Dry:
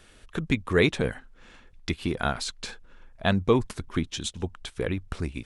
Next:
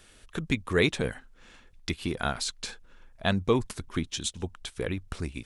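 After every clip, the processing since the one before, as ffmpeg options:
ffmpeg -i in.wav -af "highshelf=frequency=4000:gain=6.5,volume=-3dB" out.wav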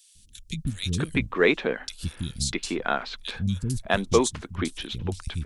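ffmpeg -i in.wav -filter_complex "[0:a]acrossover=split=210|3600[link_01][link_02][link_03];[link_01]adelay=150[link_04];[link_02]adelay=650[link_05];[link_04][link_05][link_03]amix=inputs=3:normalize=0,volume=5dB" out.wav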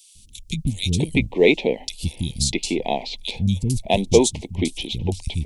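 ffmpeg -i in.wav -af "asuperstop=centerf=1400:order=8:qfactor=1.1,volume=6dB" out.wav

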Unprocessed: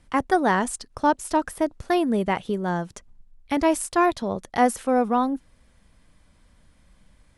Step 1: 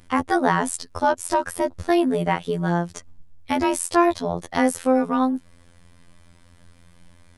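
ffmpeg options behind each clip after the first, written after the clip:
ffmpeg -i in.wav -filter_complex "[0:a]afftfilt=real='hypot(re,im)*cos(PI*b)':imag='0':win_size=2048:overlap=0.75,asplit=2[link_01][link_02];[link_02]acompressor=threshold=-32dB:ratio=6,volume=3dB[link_03];[link_01][link_03]amix=inputs=2:normalize=0,volume=2dB" out.wav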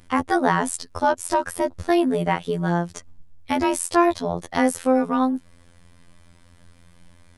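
ffmpeg -i in.wav -af anull out.wav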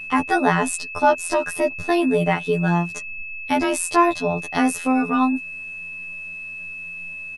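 ffmpeg -i in.wav -af "aecho=1:1:6.8:0.7,aeval=exprs='val(0)+0.0282*sin(2*PI*2600*n/s)':channel_layout=same" out.wav

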